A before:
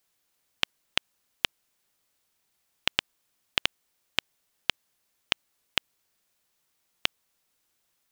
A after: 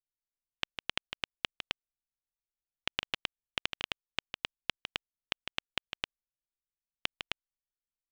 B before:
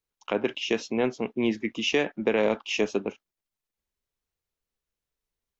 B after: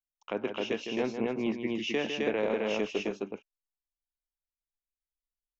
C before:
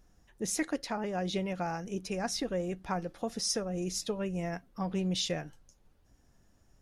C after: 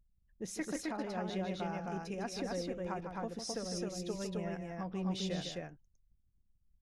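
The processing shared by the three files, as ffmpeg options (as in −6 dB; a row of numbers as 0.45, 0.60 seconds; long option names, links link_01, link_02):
-filter_complex "[0:a]anlmdn=0.000631,aresample=32000,aresample=44100,highshelf=frequency=5100:gain=-8,asplit=2[link_01][link_02];[link_02]aecho=0:1:154.5|262.4:0.398|0.794[link_03];[link_01][link_03]amix=inputs=2:normalize=0,volume=-6.5dB"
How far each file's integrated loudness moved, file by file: −7.5, −5.0, −5.0 LU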